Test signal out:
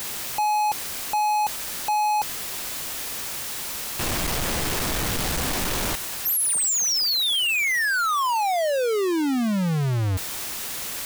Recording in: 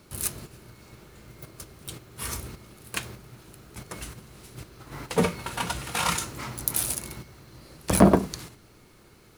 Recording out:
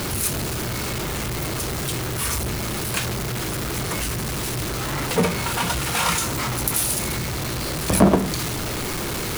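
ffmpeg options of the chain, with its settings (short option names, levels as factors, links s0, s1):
-af "aeval=exprs='val(0)+0.5*0.0891*sgn(val(0))':c=same"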